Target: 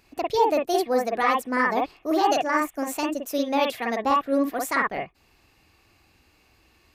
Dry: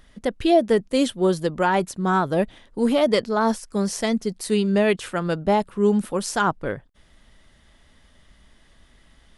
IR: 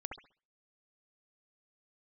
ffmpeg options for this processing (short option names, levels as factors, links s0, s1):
-filter_complex "[0:a]highpass=f=150:p=1[s0];[1:a]atrim=start_sample=2205,atrim=end_sample=3528[s1];[s0][s1]afir=irnorm=-1:irlink=0,asetrate=59535,aresample=44100"